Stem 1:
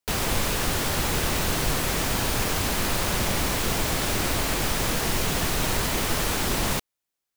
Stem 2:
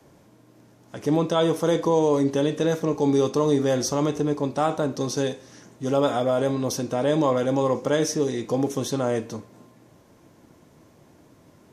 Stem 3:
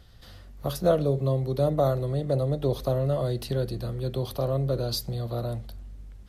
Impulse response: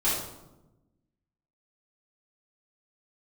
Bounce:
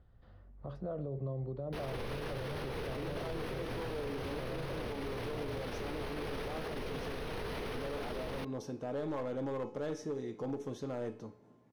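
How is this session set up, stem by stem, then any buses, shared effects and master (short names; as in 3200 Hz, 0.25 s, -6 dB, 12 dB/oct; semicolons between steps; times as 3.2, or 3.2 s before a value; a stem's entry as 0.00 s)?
-8.5 dB, 1.65 s, no send, running mean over 6 samples; bell 450 Hz +11.5 dB 0.39 oct
-2.5 dB, 1.90 s, no send, LPF 1500 Hz 6 dB/oct; hard clip -18 dBFS, distortion -14 dB; resonator 430 Hz, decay 0.49 s, mix 70%
-9.5 dB, 0.00 s, no send, LPF 1300 Hz 12 dB/oct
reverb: off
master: limiter -31 dBFS, peak gain reduction 13.5 dB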